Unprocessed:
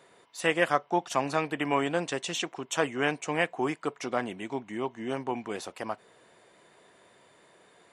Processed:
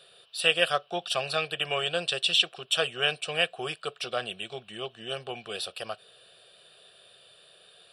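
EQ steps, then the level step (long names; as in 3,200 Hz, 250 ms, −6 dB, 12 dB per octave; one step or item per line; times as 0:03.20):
flat-topped bell 4,900 Hz +13 dB 2.5 octaves
phaser with its sweep stopped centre 1,400 Hz, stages 8
0.0 dB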